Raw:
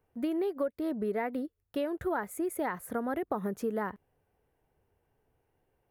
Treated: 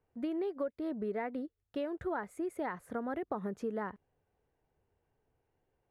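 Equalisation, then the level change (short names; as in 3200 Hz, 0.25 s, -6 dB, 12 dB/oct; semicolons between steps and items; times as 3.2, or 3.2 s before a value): air absorption 69 m; -4.0 dB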